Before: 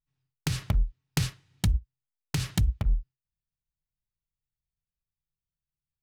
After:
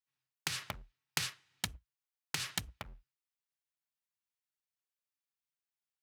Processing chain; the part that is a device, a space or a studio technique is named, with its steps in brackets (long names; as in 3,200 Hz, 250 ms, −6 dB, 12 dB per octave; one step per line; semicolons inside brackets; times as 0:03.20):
filter by subtraction (in parallel: low-pass filter 1,500 Hz 12 dB per octave + polarity inversion)
on the sum: level −2 dB